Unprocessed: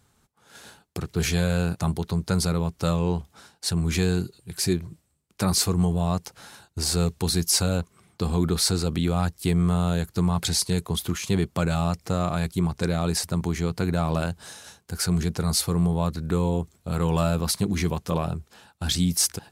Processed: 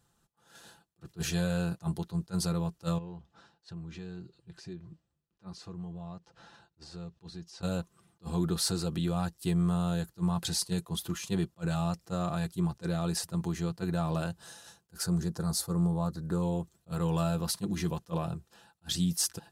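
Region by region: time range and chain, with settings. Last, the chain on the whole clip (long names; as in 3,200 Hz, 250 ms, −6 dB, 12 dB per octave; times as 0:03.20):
0:02.98–0:07.63: downward compressor 2.5 to 1, threshold −37 dBFS + high-frequency loss of the air 140 metres
0:15.03–0:16.42: parametric band 2,700 Hz −11 dB + highs frequency-modulated by the lows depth 0.12 ms
whole clip: notch filter 2,200 Hz, Q 6.4; comb filter 5.9 ms, depth 45%; level that may rise only so fast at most 450 dB per second; level −8 dB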